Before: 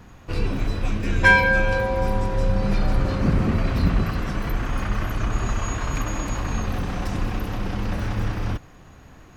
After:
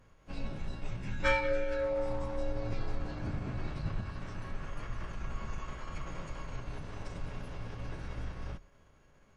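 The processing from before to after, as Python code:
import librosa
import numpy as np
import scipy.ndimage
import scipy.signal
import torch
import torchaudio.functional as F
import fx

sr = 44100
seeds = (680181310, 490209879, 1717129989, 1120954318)

y = fx.hum_notches(x, sr, base_hz=60, count=2)
y = fx.pitch_keep_formants(y, sr, semitones=-10.0)
y = fx.comb_fb(y, sr, f0_hz=550.0, decay_s=0.17, harmonics='all', damping=0.0, mix_pct=70)
y = y * librosa.db_to_amplitude(-5.0)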